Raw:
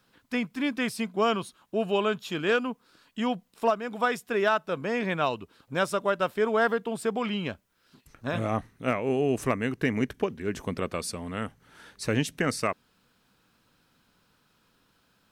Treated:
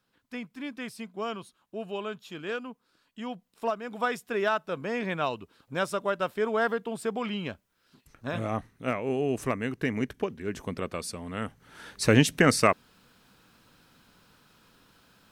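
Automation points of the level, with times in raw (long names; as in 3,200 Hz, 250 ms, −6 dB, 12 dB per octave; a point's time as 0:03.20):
0:03.23 −9 dB
0:03.98 −2.5 dB
0:11.25 −2.5 dB
0:12.02 +6.5 dB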